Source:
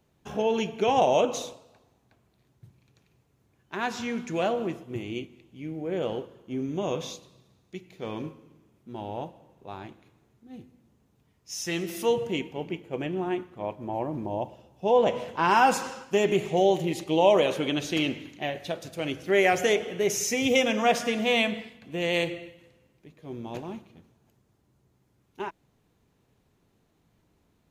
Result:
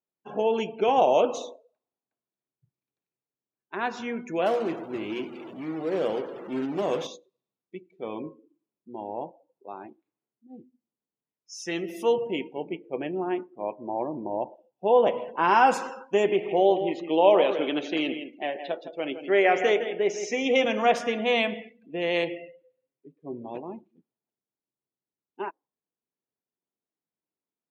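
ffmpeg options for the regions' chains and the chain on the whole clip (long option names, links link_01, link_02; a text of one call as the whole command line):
ffmpeg -i in.wav -filter_complex "[0:a]asettb=1/sr,asplit=3[link_01][link_02][link_03];[link_01]atrim=end=4.464[link_04];[link_02]atrim=start=4.46:end=7.07,asetpts=PTS-STARTPTS,afade=type=in:duration=0.004:curve=qsin,afade=type=out:start_time=2.606:duration=0.004:curve=qsin,aeval=exprs='val(0)+0.5*0.0211*sgn(val(0))':channel_layout=same,acrusher=bits=3:mode=log:mix=0:aa=0.000001,bandreject=frequency=60:width_type=h:width=6,bandreject=frequency=120:width_type=h:width=6,bandreject=frequency=180:width_type=h:width=6,bandreject=frequency=240:width_type=h:width=6,bandreject=frequency=300:width_type=h:width=6,bandreject=frequency=360:width_type=h:width=6,bandreject=frequency=420:width_type=h:width=6[link_05];[link_03]atrim=start=7.066[link_06];[link_04][link_05]acrossfade=duration=0.004:curve1=hsin:curve2=qsin[link_07];[link_07][link_06]acrossfade=duration=0.004:curve1=qsin:curve2=hsin,asettb=1/sr,asplit=3[link_08][link_09][link_10];[link_08]atrim=end=16.294[link_11];[link_09]atrim=start=16.29:end=20.65,asetpts=PTS-STARTPTS,afade=type=in:duration=0.004:curve=qsin,afade=type=out:start_time=4.356:duration=0.004:curve=qsin,highpass=200,lowpass=5200,aecho=1:1:163:0.335,atrim=end_sample=192276[link_12];[link_10]atrim=start=20.646[link_13];[link_11][link_12]acrossfade=duration=0.004:curve1=hsin:curve2=qsin[link_14];[link_14][link_13]acrossfade=duration=0.004:curve1=qsin:curve2=hsin,asettb=1/sr,asplit=3[link_15][link_16][link_17];[link_15]atrim=end=22.404[link_18];[link_16]atrim=start=22.4:end=23.51,asetpts=PTS-STARTPTS,afade=type=in:duration=0.004:curve=qsin,afade=type=out:start_time=1.106:duration=0.004:curve=qsin,aemphasis=mode=reproduction:type=cd,aecho=1:1:7.3:0.63,atrim=end_sample=48951[link_19];[link_17]atrim=start=23.506[link_20];[link_18][link_19]acrossfade=duration=0.004:curve1=hsin:curve2=qsin[link_21];[link_21][link_20]acrossfade=duration=0.004:curve1=qsin:curve2=hsin,highpass=260,afftdn=noise_reduction=27:noise_floor=-44,highshelf=frequency=3400:gain=-9,volume=2dB" out.wav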